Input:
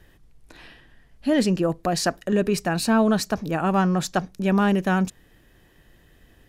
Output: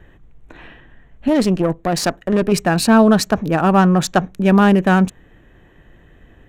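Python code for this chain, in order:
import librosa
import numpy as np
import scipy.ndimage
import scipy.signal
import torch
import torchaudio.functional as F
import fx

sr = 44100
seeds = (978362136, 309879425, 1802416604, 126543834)

y = fx.wiener(x, sr, points=9)
y = fx.tube_stage(y, sr, drive_db=17.0, bias=0.65, at=(1.28, 2.52))
y = y * librosa.db_to_amplitude(8.0)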